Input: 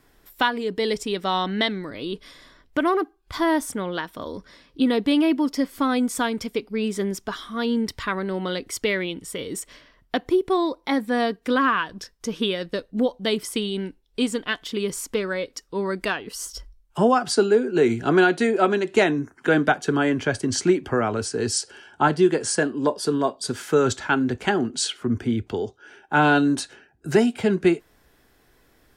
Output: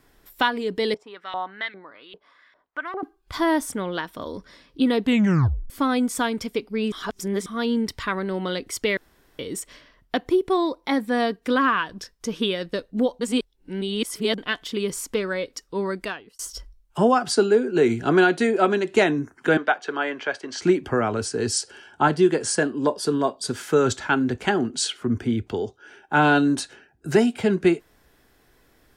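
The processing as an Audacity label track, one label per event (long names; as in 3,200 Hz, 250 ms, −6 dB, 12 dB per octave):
0.940000	3.030000	auto-filter band-pass saw up 2.5 Hz 620–2,300 Hz
5.020000	5.020000	tape stop 0.68 s
6.920000	7.460000	reverse
8.970000	9.390000	fill with room tone
13.210000	14.380000	reverse
15.840000	16.390000	fade out
19.570000	20.620000	band-pass filter 560–3,900 Hz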